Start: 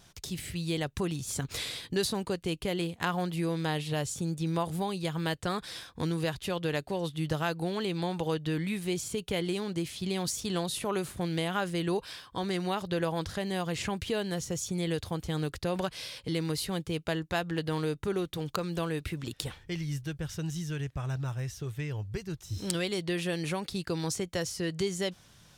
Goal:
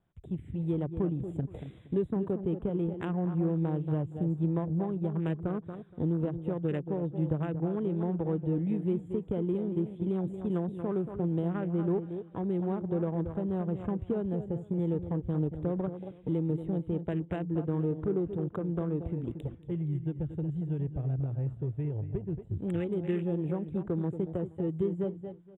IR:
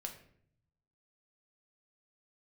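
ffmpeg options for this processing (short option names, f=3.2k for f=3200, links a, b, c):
-filter_complex "[0:a]equalizer=f=260:t=o:w=2.4:g=3.5,asplit=2[a][b];[b]aecho=0:1:230:0.335[c];[a][c]amix=inputs=2:normalize=0,afwtdn=0.0178,acrossover=split=470[d][e];[e]acompressor=threshold=-44dB:ratio=3[f];[d][f]amix=inputs=2:normalize=0,aemphasis=mode=production:type=50fm,adynamicsmooth=sensitivity=4.5:basefreq=1.5k,asuperstop=centerf=5200:order=12:qfactor=1.5,asplit=2[g][h];[h]aecho=0:1:470|940:0.0708|0.0255[i];[g][i]amix=inputs=2:normalize=0"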